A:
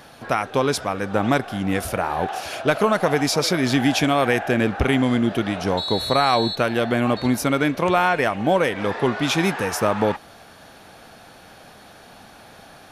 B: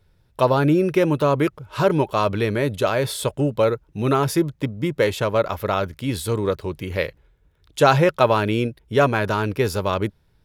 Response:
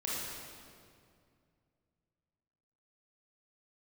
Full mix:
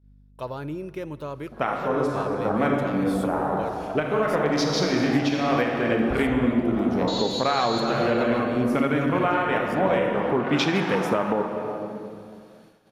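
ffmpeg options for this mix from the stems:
-filter_complex "[0:a]equalizer=f=93:w=3.2:g=-13.5,afwtdn=0.0501,adelay=1300,volume=1.06,asplit=2[s0][s1];[s1]volume=0.422[s2];[1:a]aeval=exprs='val(0)+0.0178*(sin(2*PI*50*n/s)+sin(2*PI*2*50*n/s)/2+sin(2*PI*3*50*n/s)/3+sin(2*PI*4*50*n/s)/4+sin(2*PI*5*50*n/s)/5)':c=same,volume=0.158,asplit=3[s3][s4][s5];[s4]volume=0.0841[s6];[s5]apad=whole_len=626948[s7];[s0][s7]sidechaincompress=threshold=0.00282:ratio=3:attack=16:release=224[s8];[2:a]atrim=start_sample=2205[s9];[s2][s6]amix=inputs=2:normalize=0[s10];[s10][s9]afir=irnorm=-1:irlink=0[s11];[s8][s3][s11]amix=inputs=3:normalize=0,agate=range=0.355:threshold=0.00251:ratio=16:detection=peak,alimiter=limit=0.266:level=0:latency=1:release=379"

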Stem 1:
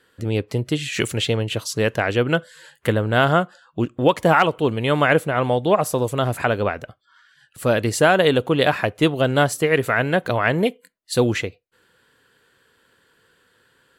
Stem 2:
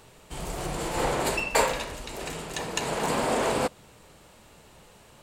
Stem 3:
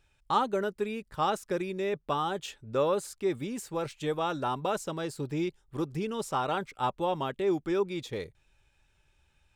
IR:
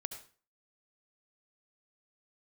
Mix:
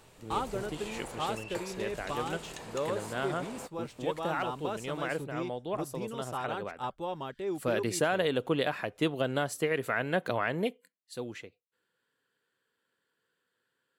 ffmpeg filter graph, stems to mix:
-filter_complex "[0:a]highpass=140,volume=0.398,afade=t=in:st=7.24:d=0.68:silence=0.334965,afade=t=out:st=10.55:d=0.58:silence=0.251189[s0];[1:a]acompressor=threshold=0.0158:ratio=8,volume=0.562[s1];[2:a]volume=0.473[s2];[s0][s1][s2]amix=inputs=3:normalize=0,alimiter=limit=0.15:level=0:latency=1:release=296"

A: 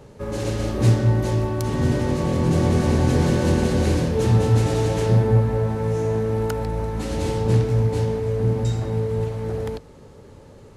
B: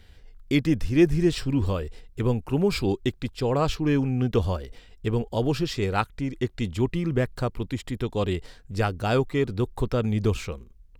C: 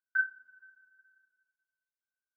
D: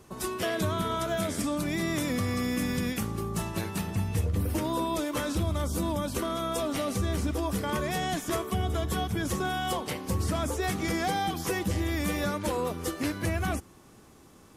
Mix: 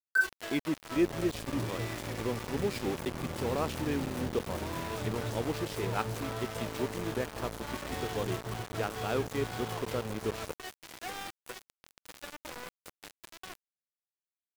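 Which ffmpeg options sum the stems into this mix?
-filter_complex "[0:a]acompressor=threshold=0.0631:ratio=2.5,adelay=750,volume=0.237[s0];[1:a]highpass=240,volume=0.422,asplit=2[s1][s2];[2:a]equalizer=f=500:t=o:w=1.6:g=13,volume=1.12[s3];[3:a]highpass=410,volume=0.422[s4];[s2]apad=whole_len=642116[s5];[s4][s5]sidechaincompress=threshold=0.02:ratio=10:attack=40:release=271[s6];[s0][s1][s3][s6]amix=inputs=4:normalize=0,highshelf=f=5300:g=-9.5,aeval=exprs='val(0)*gte(abs(val(0)),0.0188)':c=same"

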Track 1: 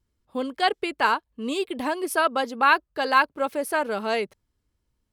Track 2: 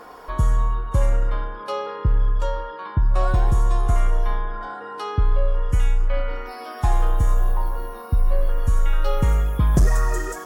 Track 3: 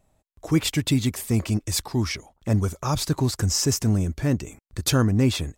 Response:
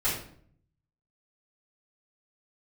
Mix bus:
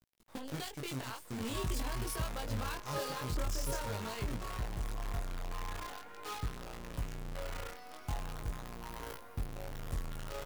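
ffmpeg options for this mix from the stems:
-filter_complex "[0:a]acontrast=35,alimiter=limit=0.251:level=0:latency=1:release=234,acompressor=threshold=0.0126:ratio=2,volume=1.33,asplit=2[s0][s1];[1:a]acompressor=threshold=0.1:ratio=20,adelay=1250,volume=0.316[s2];[2:a]volume=0.211[s3];[s1]apad=whole_len=245654[s4];[s3][s4]sidechaingate=range=0.0224:threshold=0.001:ratio=16:detection=peak[s5];[s0][s5]amix=inputs=2:normalize=0,acrossover=split=150|3000[s6][s7][s8];[s7]acompressor=threshold=0.0178:ratio=4[s9];[s6][s9][s8]amix=inputs=3:normalize=0,alimiter=level_in=1.58:limit=0.0631:level=0:latency=1:release=289,volume=0.631,volume=1[s10];[s2][s10]amix=inputs=2:normalize=0,acrusher=bits=7:dc=4:mix=0:aa=0.000001,flanger=delay=17:depth=6.2:speed=0.45"

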